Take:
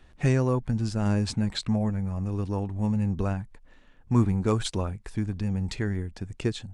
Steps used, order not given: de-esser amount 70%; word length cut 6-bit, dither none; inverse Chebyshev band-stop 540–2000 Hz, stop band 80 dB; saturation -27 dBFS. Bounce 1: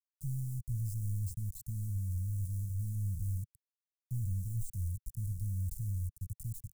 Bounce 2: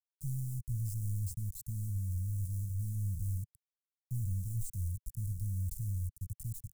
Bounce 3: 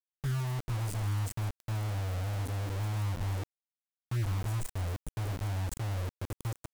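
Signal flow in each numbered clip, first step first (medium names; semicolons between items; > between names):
word length cut > de-esser > saturation > inverse Chebyshev band-stop; word length cut > saturation > inverse Chebyshev band-stop > de-esser; de-esser > inverse Chebyshev band-stop > word length cut > saturation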